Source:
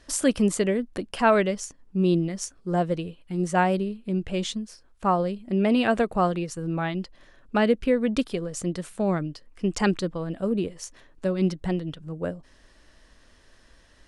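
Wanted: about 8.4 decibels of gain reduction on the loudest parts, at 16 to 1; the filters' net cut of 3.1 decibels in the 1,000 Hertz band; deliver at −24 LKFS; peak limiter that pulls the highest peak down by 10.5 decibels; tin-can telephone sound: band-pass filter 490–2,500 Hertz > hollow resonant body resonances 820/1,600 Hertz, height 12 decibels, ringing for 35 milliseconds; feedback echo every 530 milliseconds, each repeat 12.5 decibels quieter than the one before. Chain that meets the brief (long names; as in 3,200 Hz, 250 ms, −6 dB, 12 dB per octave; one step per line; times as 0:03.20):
parametric band 1,000 Hz −3.5 dB
downward compressor 16 to 1, threshold −24 dBFS
brickwall limiter −24 dBFS
band-pass filter 490–2,500 Hz
repeating echo 530 ms, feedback 24%, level −12.5 dB
hollow resonant body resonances 820/1,600 Hz, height 12 dB, ringing for 35 ms
level +14 dB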